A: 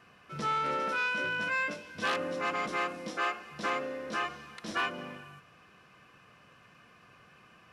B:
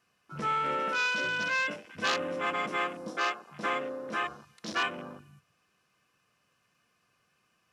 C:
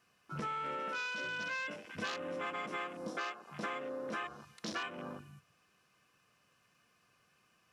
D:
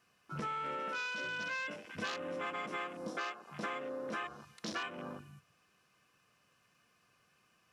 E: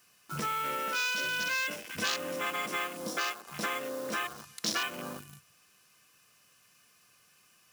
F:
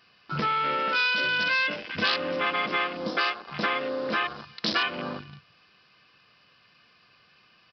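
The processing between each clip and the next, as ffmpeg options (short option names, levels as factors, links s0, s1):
-af "afwtdn=0.00794,bass=f=250:g=-1,treble=f=4000:g=13,volume=1.12"
-af "acompressor=threshold=0.0126:ratio=6,volume=1.12"
-af anull
-filter_complex "[0:a]asplit=2[s0][s1];[s1]acrusher=bits=7:mix=0:aa=0.000001,volume=0.282[s2];[s0][s2]amix=inputs=2:normalize=0,crystalizer=i=4:c=0,volume=1.12"
-af "aresample=11025,aresample=44100,volume=2.24"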